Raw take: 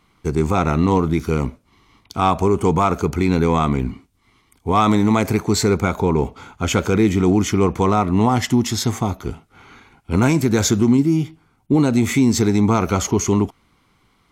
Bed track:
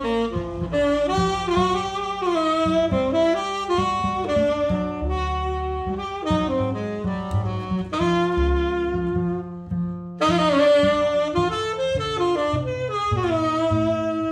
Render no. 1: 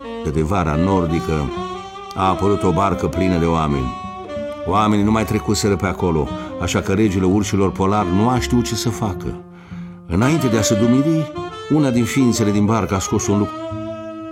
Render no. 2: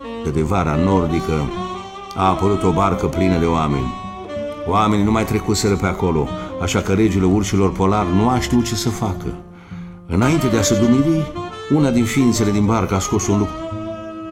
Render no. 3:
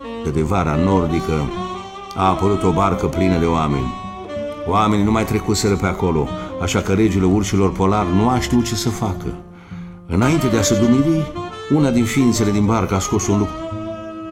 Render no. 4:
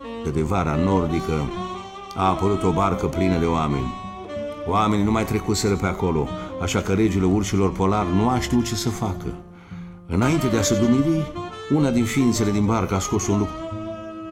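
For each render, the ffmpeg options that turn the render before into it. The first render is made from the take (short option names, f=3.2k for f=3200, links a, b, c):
-filter_complex "[1:a]volume=-6dB[a];[0:a][a]amix=inputs=2:normalize=0"
-filter_complex "[0:a]asplit=2[a][b];[b]adelay=21,volume=-13dB[c];[a][c]amix=inputs=2:normalize=0,asplit=5[d][e][f][g][h];[e]adelay=92,afreqshift=-130,volume=-17.5dB[i];[f]adelay=184,afreqshift=-260,volume=-23.3dB[j];[g]adelay=276,afreqshift=-390,volume=-29.2dB[k];[h]adelay=368,afreqshift=-520,volume=-35dB[l];[d][i][j][k][l]amix=inputs=5:normalize=0"
-af anull
-af "volume=-4dB"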